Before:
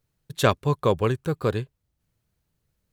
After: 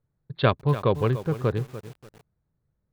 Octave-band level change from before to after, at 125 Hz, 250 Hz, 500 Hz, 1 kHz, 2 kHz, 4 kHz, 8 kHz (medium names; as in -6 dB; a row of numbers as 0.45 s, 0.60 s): +2.0 dB, 0.0 dB, -1.5 dB, -1.5 dB, -2.0 dB, -3.0 dB, under -10 dB